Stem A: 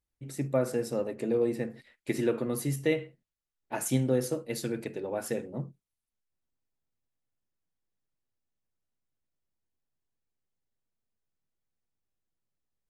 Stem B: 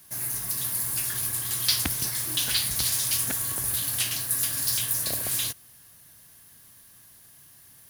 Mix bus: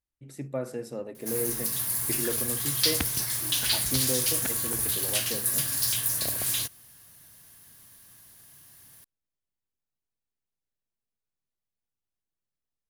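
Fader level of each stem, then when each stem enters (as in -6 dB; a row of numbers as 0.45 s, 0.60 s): -5.0 dB, -0.5 dB; 0.00 s, 1.15 s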